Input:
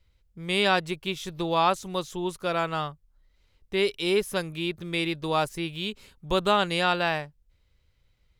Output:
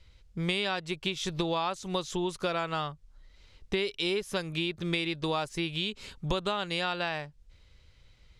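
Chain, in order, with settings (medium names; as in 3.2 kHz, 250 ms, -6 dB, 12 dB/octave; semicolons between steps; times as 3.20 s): low-pass 6.3 kHz 12 dB/octave; treble shelf 3.6 kHz +7 dB; compression 12:1, threshold -35 dBFS, peak gain reduction 19 dB; trim +8 dB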